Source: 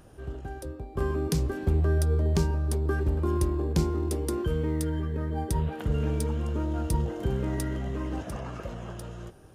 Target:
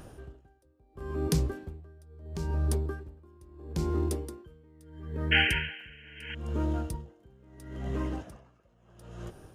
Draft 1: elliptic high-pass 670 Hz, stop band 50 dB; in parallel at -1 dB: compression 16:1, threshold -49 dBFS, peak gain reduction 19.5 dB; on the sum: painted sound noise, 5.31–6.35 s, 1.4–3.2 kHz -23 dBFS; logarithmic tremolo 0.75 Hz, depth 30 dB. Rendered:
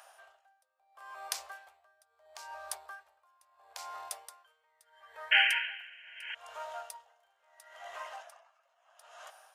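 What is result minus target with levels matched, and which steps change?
500 Hz band -12.0 dB
remove: elliptic high-pass 670 Hz, stop band 50 dB

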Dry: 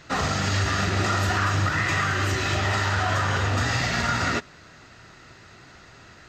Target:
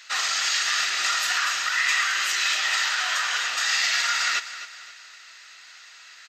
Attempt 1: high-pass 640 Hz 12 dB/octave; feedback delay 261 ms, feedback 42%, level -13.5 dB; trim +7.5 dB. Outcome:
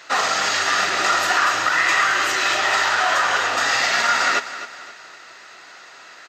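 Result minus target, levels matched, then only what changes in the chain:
500 Hz band +15.0 dB
change: high-pass 2.2 kHz 12 dB/octave

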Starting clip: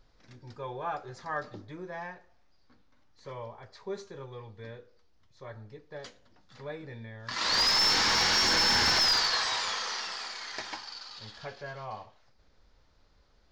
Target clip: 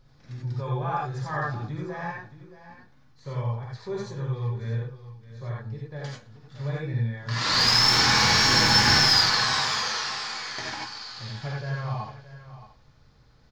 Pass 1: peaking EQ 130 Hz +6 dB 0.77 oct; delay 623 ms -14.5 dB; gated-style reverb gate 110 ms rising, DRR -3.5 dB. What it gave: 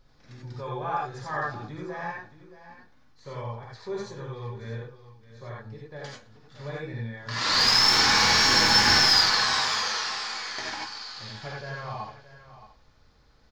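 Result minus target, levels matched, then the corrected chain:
125 Hz band -10.5 dB
peaking EQ 130 Hz +16.5 dB 0.77 oct; delay 623 ms -14.5 dB; gated-style reverb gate 110 ms rising, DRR -3.5 dB

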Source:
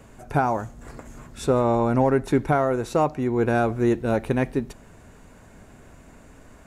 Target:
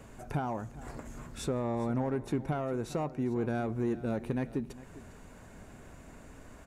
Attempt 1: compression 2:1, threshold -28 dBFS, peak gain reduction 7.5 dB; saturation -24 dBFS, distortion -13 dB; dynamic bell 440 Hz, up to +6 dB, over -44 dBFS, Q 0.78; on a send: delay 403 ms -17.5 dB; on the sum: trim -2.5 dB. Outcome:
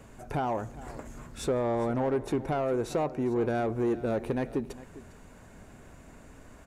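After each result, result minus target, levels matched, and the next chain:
compression: peak gain reduction -4 dB; 500 Hz band +2.0 dB
compression 2:1, threshold -36.5 dBFS, peak gain reduction 11.5 dB; saturation -24 dBFS, distortion -19 dB; dynamic bell 440 Hz, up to +6 dB, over -44 dBFS, Q 0.78; on a send: delay 403 ms -17.5 dB; on the sum: trim -2.5 dB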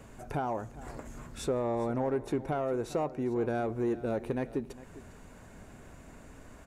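500 Hz band +2.0 dB
compression 2:1, threshold -36.5 dBFS, peak gain reduction 11.5 dB; saturation -24 dBFS, distortion -19 dB; dynamic bell 190 Hz, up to +6 dB, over -44 dBFS, Q 0.78; on a send: delay 403 ms -17.5 dB; on the sum: trim -2.5 dB

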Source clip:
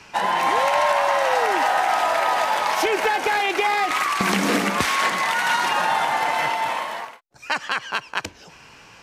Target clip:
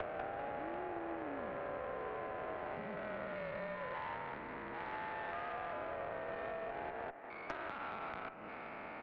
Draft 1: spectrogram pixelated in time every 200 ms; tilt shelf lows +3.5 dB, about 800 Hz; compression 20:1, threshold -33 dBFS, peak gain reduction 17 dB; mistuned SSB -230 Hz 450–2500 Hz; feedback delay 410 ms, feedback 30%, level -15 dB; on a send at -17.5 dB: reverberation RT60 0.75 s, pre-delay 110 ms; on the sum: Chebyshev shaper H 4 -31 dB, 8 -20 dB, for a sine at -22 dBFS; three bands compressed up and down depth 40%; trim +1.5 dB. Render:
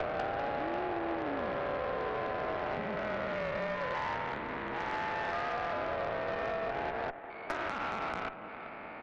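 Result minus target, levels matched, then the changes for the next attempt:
compression: peak gain reduction -7.5 dB
change: compression 20:1, threshold -41 dBFS, peak gain reduction 24.5 dB

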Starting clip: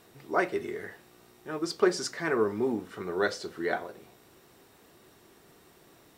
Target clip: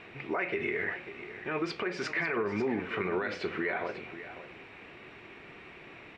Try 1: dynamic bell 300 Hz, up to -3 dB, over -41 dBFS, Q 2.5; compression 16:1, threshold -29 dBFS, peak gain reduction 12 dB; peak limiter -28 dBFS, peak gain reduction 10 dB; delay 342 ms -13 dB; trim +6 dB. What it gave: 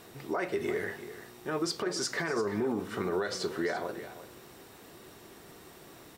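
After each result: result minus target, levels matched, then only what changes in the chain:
echo 203 ms early; 2 kHz band -4.5 dB
change: delay 545 ms -13 dB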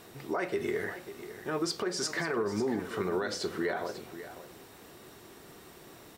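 2 kHz band -4.5 dB
add after compression: resonant low-pass 2.4 kHz, resonance Q 5.6

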